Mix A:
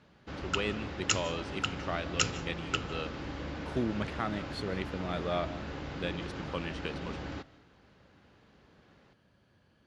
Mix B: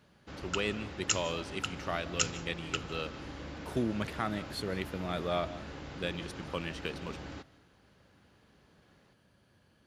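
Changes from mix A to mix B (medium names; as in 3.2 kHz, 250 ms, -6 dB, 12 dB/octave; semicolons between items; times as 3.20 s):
background -4.5 dB; master: remove distance through air 73 m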